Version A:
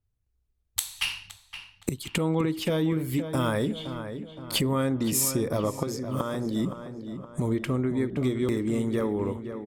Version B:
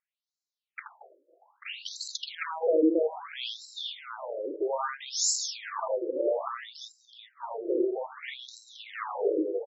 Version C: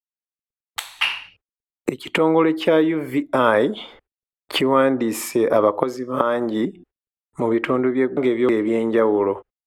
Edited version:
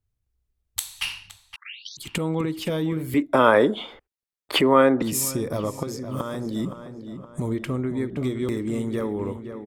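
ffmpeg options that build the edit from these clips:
-filter_complex "[0:a]asplit=3[a][b][c];[a]atrim=end=1.562[d];[1:a]atrim=start=1.558:end=1.972[e];[b]atrim=start=1.968:end=3.142[f];[2:a]atrim=start=3.138:end=5.022[g];[c]atrim=start=5.018[h];[d][e]acrossfade=d=0.004:c1=hsin:c2=hsin[i];[i][f]acrossfade=d=0.004:c1=hsin:c2=hsin[j];[j][g]acrossfade=d=0.004:c1=hsin:c2=hsin[k];[k][h]acrossfade=d=0.004:c1=hsin:c2=hsin"

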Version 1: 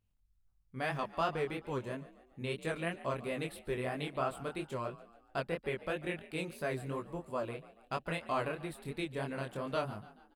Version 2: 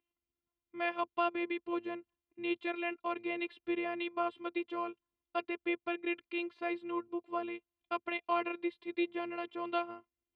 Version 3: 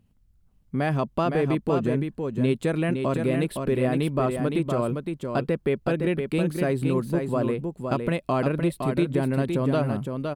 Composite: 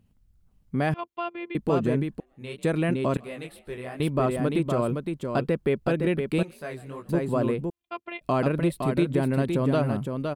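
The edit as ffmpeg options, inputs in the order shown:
-filter_complex "[1:a]asplit=2[a][b];[0:a]asplit=3[c][d][e];[2:a]asplit=6[f][g][h][i][j][k];[f]atrim=end=0.942[l];[a]atrim=start=0.938:end=1.552[m];[g]atrim=start=1.548:end=2.202[n];[c]atrim=start=2.198:end=2.632[o];[h]atrim=start=2.628:end=3.172[p];[d]atrim=start=3.168:end=4.002[q];[i]atrim=start=3.998:end=6.432[r];[e]atrim=start=6.428:end=7.092[s];[j]atrim=start=7.088:end=7.702[t];[b]atrim=start=7.698:end=8.212[u];[k]atrim=start=8.208[v];[l][m]acrossfade=d=0.004:c1=hsin:c2=hsin[w];[w][n]acrossfade=d=0.004:c1=hsin:c2=hsin[x];[x][o]acrossfade=d=0.004:c1=hsin:c2=hsin[y];[y][p]acrossfade=d=0.004:c1=hsin:c2=hsin[z];[z][q]acrossfade=d=0.004:c1=hsin:c2=hsin[aa];[aa][r]acrossfade=d=0.004:c1=hsin:c2=hsin[ab];[ab][s]acrossfade=d=0.004:c1=hsin:c2=hsin[ac];[ac][t]acrossfade=d=0.004:c1=hsin:c2=hsin[ad];[ad][u]acrossfade=d=0.004:c1=hsin:c2=hsin[ae];[ae][v]acrossfade=d=0.004:c1=hsin:c2=hsin"

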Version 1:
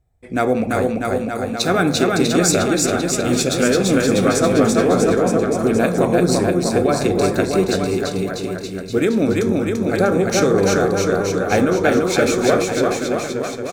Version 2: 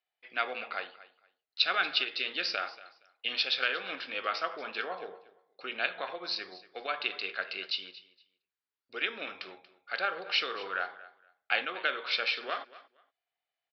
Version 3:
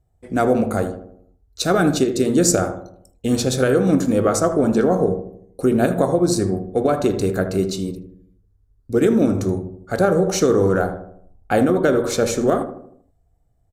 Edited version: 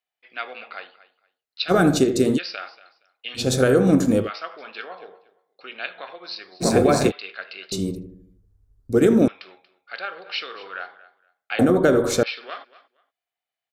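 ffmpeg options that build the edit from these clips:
-filter_complex "[2:a]asplit=4[a][b][c][d];[1:a]asplit=6[e][f][g][h][i][j];[e]atrim=end=1.72[k];[a]atrim=start=1.68:end=2.39[l];[f]atrim=start=2.35:end=3.5[m];[b]atrim=start=3.34:end=4.31[n];[g]atrim=start=4.15:end=6.64[o];[0:a]atrim=start=6.6:end=7.12[p];[h]atrim=start=7.08:end=7.722[q];[c]atrim=start=7.718:end=9.282[r];[i]atrim=start=9.278:end=11.592[s];[d]atrim=start=11.588:end=12.232[t];[j]atrim=start=12.228[u];[k][l]acrossfade=d=0.04:c1=tri:c2=tri[v];[v][m]acrossfade=d=0.04:c1=tri:c2=tri[w];[w][n]acrossfade=d=0.16:c1=tri:c2=tri[x];[x][o]acrossfade=d=0.16:c1=tri:c2=tri[y];[y][p]acrossfade=d=0.04:c1=tri:c2=tri[z];[z][q]acrossfade=d=0.04:c1=tri:c2=tri[aa];[aa][r]acrossfade=d=0.004:c1=hsin:c2=hsin[ab];[ab][s]acrossfade=d=0.004:c1=hsin:c2=hsin[ac];[ac][t]acrossfade=d=0.004:c1=hsin:c2=hsin[ad];[ad][u]acrossfade=d=0.004:c1=hsin:c2=hsin"

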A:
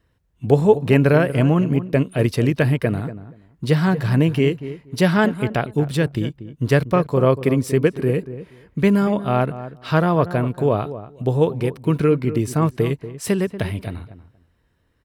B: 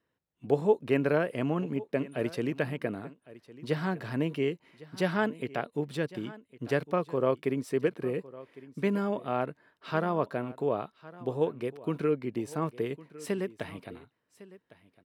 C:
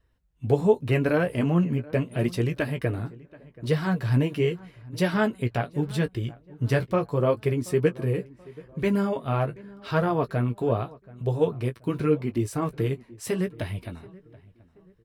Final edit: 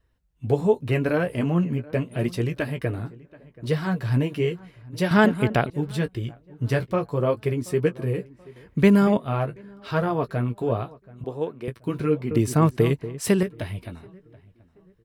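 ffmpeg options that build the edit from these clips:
-filter_complex "[0:a]asplit=3[a][b][c];[2:a]asplit=5[d][e][f][g][h];[d]atrim=end=5.112[i];[a]atrim=start=5.108:end=5.702[j];[e]atrim=start=5.698:end=8.562[k];[b]atrim=start=8.558:end=9.172[l];[f]atrim=start=9.168:end=11.242[m];[1:a]atrim=start=11.238:end=11.682[n];[g]atrim=start=11.678:end=12.312[o];[c]atrim=start=12.308:end=13.432[p];[h]atrim=start=13.428[q];[i][j]acrossfade=d=0.004:c1=hsin:c2=hsin[r];[r][k]acrossfade=d=0.004:c1=hsin:c2=hsin[s];[s][l]acrossfade=d=0.004:c1=hsin:c2=hsin[t];[t][m]acrossfade=d=0.004:c1=hsin:c2=hsin[u];[u][n]acrossfade=d=0.004:c1=hsin:c2=hsin[v];[v][o]acrossfade=d=0.004:c1=hsin:c2=hsin[w];[w][p]acrossfade=d=0.004:c1=hsin:c2=hsin[x];[x][q]acrossfade=d=0.004:c1=hsin:c2=hsin"

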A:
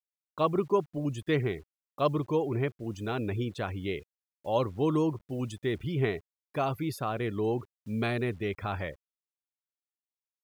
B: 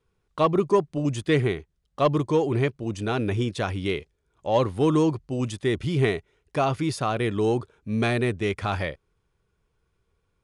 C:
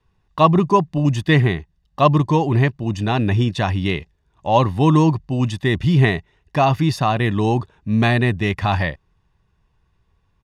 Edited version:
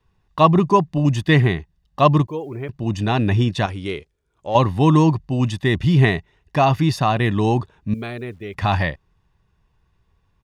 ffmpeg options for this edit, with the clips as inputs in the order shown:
-filter_complex "[0:a]asplit=2[a][b];[2:a]asplit=4[c][d][e][f];[c]atrim=end=2.272[g];[a]atrim=start=2.268:end=2.692[h];[d]atrim=start=2.688:end=3.662[i];[1:a]atrim=start=3.658:end=4.552[j];[e]atrim=start=4.548:end=7.942[k];[b]atrim=start=7.938:end=8.552[l];[f]atrim=start=8.548[m];[g][h]acrossfade=d=0.004:c1=hsin:c2=hsin[n];[n][i]acrossfade=d=0.004:c1=hsin:c2=hsin[o];[o][j]acrossfade=d=0.004:c1=hsin:c2=hsin[p];[p][k]acrossfade=d=0.004:c1=hsin:c2=hsin[q];[q][l]acrossfade=d=0.004:c1=hsin:c2=hsin[r];[r][m]acrossfade=d=0.004:c1=hsin:c2=hsin"

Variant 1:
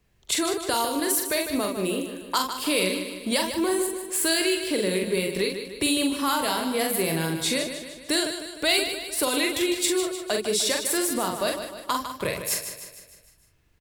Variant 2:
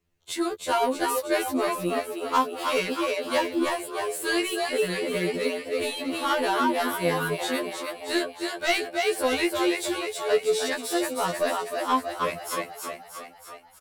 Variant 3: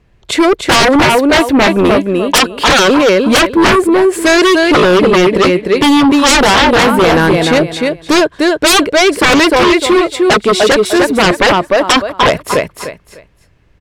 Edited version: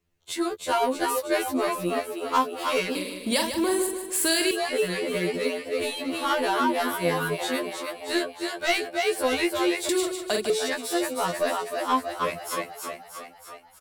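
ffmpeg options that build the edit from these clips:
-filter_complex "[0:a]asplit=2[a][b];[1:a]asplit=3[c][d][e];[c]atrim=end=2.952[f];[a]atrim=start=2.948:end=4.512[g];[d]atrim=start=4.508:end=9.892[h];[b]atrim=start=9.888:end=10.502[i];[e]atrim=start=10.498[j];[f][g]acrossfade=d=0.004:c1=hsin:c2=hsin[k];[k][h]acrossfade=d=0.004:c1=hsin:c2=hsin[l];[l][i]acrossfade=d=0.004:c1=hsin:c2=hsin[m];[m][j]acrossfade=d=0.004:c1=hsin:c2=hsin"

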